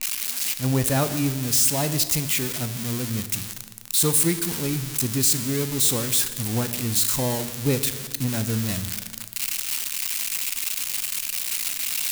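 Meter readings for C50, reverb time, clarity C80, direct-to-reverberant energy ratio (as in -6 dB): 11.5 dB, 1.6 s, 13.0 dB, 10.0 dB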